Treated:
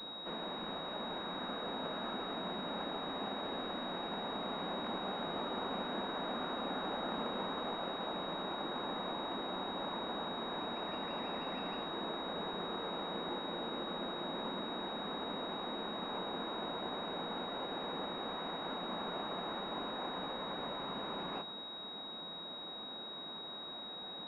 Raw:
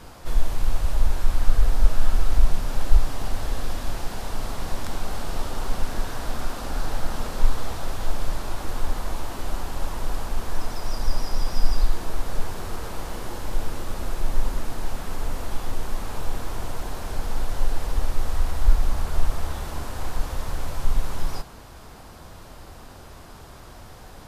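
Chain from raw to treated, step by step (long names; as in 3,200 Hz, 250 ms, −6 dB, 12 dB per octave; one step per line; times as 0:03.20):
Butterworth high-pass 170 Hz 72 dB per octave
switching amplifier with a slow clock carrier 3,800 Hz
level −3 dB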